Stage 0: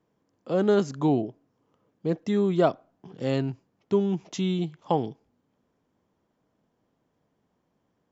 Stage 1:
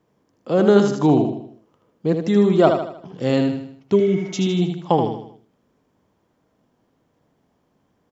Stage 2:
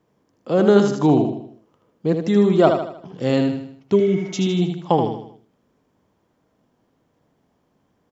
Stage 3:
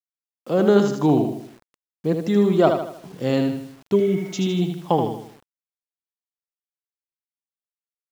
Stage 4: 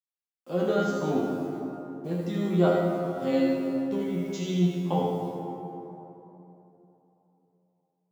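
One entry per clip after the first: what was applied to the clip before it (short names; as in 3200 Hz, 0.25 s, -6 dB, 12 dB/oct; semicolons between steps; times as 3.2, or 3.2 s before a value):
feedback echo 78 ms, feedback 44%, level -6 dB; spectral repair 3.98–4.46, 730–2300 Hz after; gain +6.5 dB
nothing audible
requantised 8-bit, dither none; gain -2 dB
resonator 88 Hz, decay 0.29 s, harmonics all, mix 100%; plate-style reverb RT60 3.4 s, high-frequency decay 0.45×, DRR -0.5 dB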